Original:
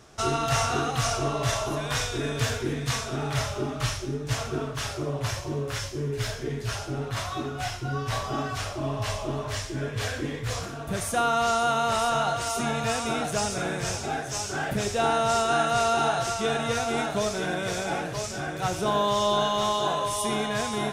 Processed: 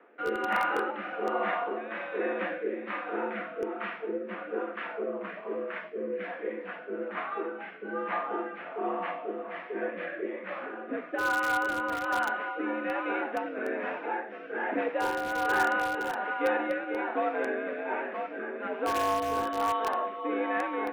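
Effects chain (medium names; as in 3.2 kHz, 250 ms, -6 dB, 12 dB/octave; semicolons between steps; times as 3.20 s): band-stop 710 Hz, Q 12; mistuned SSB +76 Hz 210–2300 Hz; in parallel at -10.5 dB: integer overflow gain 18 dB; on the sum: rotary cabinet horn 1.2 Hz; trim -1 dB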